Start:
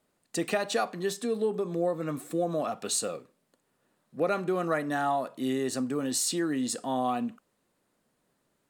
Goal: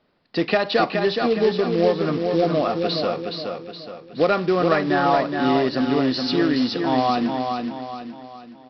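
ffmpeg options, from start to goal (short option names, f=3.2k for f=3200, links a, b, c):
-af "aresample=11025,acrusher=bits=4:mode=log:mix=0:aa=0.000001,aresample=44100,aecho=1:1:420|840|1260|1680|2100:0.562|0.242|0.104|0.0447|0.0192,volume=8.5dB"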